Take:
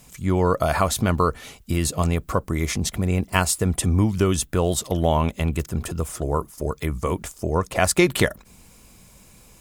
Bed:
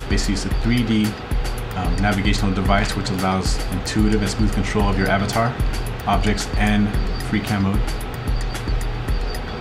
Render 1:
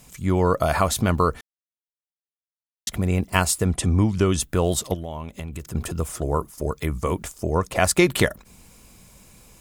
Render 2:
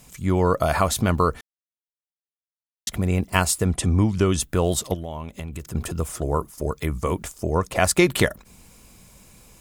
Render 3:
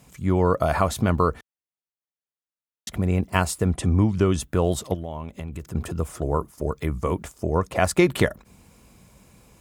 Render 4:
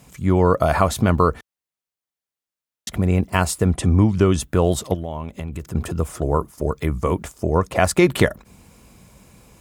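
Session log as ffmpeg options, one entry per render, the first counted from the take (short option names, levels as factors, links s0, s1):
-filter_complex "[0:a]asettb=1/sr,asplit=3[s0][s1][s2];[s0]atrim=end=3.654[s3];[s1]atrim=start=3.65:end=4.4,asetpts=PTS-STARTPTS,afade=t=in:d=0.004:c=qsin,afade=t=out:st=0.746:d=0.004:c=qsin,lowpass=8400[s4];[s2]atrim=start=4.396[s5];[s3][s4]acrossfade=d=0.004:c1=hsin:c2=qsin[s6];[s6][s5]acrossfade=d=0.004:c1=qsin:c2=hsin,asettb=1/sr,asplit=3[s7][s8][s9];[s7]atrim=end=4.944[s10];[s8]atrim=start=4.94:end=5.75,asetpts=PTS-STARTPTS,afade=t=in:d=0.004:c=qsin,afade=t=out:st=0.806:d=0.004:c=qsin,acompressor=threshold=0.0355:ratio=6:attack=3.2:release=140:knee=1:detection=peak[s11];[s9]atrim=start=5.746[s12];[s10][s11]acrossfade=d=0.004:c1=hsin:c2=qsin[s13];[s13][s12]acrossfade=d=0.004:c1=qsin:c2=hsin,asplit=3[s14][s15][s16];[s14]atrim=end=1.41,asetpts=PTS-STARTPTS,afade=t=out:st=1.406:d=0.004:c=hsin[s17];[s15]atrim=start=1.41:end=2.87,asetpts=PTS-STARTPTS,volume=0[s18];[s16]atrim=start=2.87,asetpts=PTS-STARTPTS,afade=t=in:d=0.004:c=hsin[s19];[s17][s18][s19]concat=n=3:v=0:a=1"
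-af anull
-af "highpass=47,highshelf=f=2600:g=-8"
-af "volume=1.58,alimiter=limit=0.708:level=0:latency=1"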